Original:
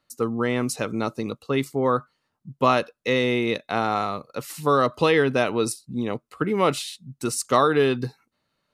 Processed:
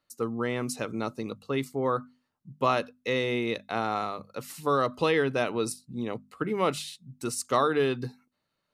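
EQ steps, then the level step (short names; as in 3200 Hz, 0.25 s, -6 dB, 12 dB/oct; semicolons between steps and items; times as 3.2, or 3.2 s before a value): notches 50/100/150/200/250 Hz; -5.5 dB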